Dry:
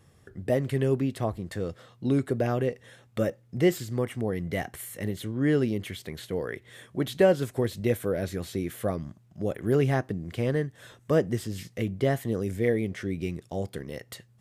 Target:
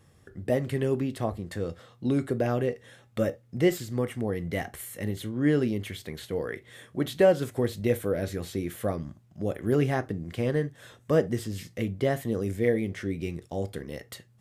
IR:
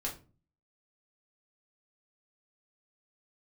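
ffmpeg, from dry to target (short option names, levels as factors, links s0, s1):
-filter_complex "[0:a]asplit=2[s0][s1];[1:a]atrim=start_sample=2205,atrim=end_sample=3528[s2];[s1][s2]afir=irnorm=-1:irlink=0,volume=0.282[s3];[s0][s3]amix=inputs=2:normalize=0,volume=0.794"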